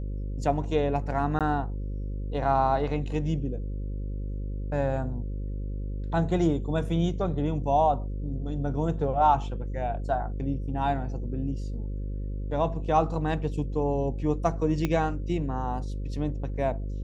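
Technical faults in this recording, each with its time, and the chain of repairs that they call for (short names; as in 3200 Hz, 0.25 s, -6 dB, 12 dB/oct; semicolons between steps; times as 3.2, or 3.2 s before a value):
buzz 50 Hz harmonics 11 -32 dBFS
1.39–1.41 gap 17 ms
14.85 pop -13 dBFS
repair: de-click; de-hum 50 Hz, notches 11; interpolate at 1.39, 17 ms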